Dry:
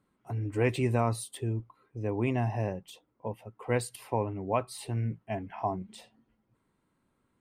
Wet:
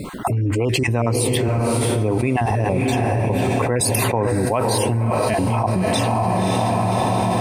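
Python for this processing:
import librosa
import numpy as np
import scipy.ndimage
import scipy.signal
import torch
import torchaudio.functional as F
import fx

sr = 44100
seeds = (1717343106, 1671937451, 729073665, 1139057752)

p1 = fx.spec_dropout(x, sr, seeds[0], share_pct=26)
p2 = p1 + fx.echo_diffused(p1, sr, ms=570, feedback_pct=46, wet_db=-9.5, dry=0)
p3 = fx.env_flatten(p2, sr, amount_pct=100)
y = p3 * librosa.db_to_amplitude(4.5)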